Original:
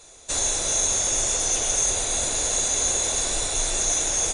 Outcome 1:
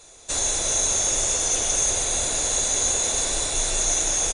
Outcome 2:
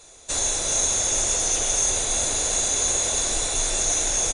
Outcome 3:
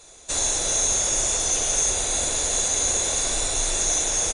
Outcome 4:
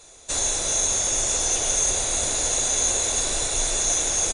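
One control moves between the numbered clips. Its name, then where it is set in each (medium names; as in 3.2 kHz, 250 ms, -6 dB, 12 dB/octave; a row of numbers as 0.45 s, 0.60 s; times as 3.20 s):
feedback delay, time: 191 ms, 416 ms, 68 ms, 1000 ms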